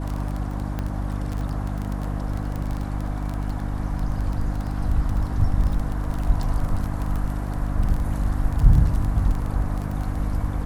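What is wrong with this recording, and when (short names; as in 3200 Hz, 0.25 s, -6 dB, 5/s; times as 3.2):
crackle 16/s -25 dBFS
hum 50 Hz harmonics 6 -27 dBFS
0.79 pop -15 dBFS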